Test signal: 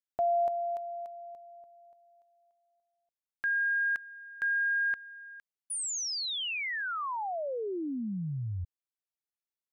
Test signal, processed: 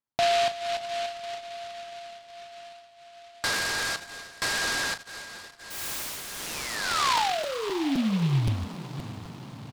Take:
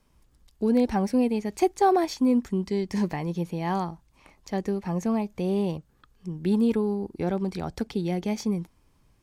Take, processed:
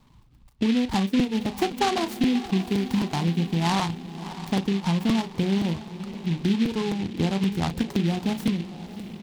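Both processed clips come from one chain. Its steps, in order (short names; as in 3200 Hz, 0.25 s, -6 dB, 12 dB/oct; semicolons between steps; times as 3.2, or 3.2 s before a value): graphic EQ 125/250/500/1000/2000/4000 Hz +10/+5/-5/+10/-4/-9 dB; reverb removal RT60 0.81 s; compressor, threshold -25 dBFS; LPF 8500 Hz 24 dB/oct; doubler 36 ms -10 dB; diffused feedback echo 0.602 s, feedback 60%, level -13.5 dB; crackling interface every 0.26 s, samples 256, repeat, from 0.93; noise-modulated delay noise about 2700 Hz, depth 0.1 ms; gain +4 dB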